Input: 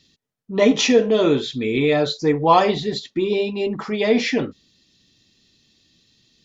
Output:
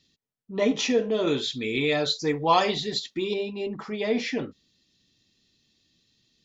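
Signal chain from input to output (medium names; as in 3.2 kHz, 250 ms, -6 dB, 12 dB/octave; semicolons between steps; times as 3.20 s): 1.27–3.34 s: treble shelf 2 kHz +10.5 dB; trim -8 dB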